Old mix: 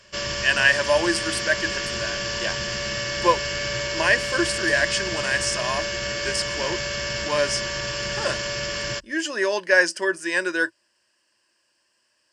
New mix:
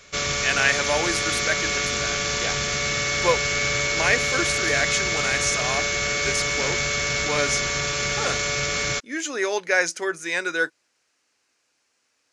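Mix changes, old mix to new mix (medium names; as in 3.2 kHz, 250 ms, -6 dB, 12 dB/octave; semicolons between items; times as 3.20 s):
background +4.0 dB; master: remove rippled EQ curve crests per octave 1.3, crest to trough 12 dB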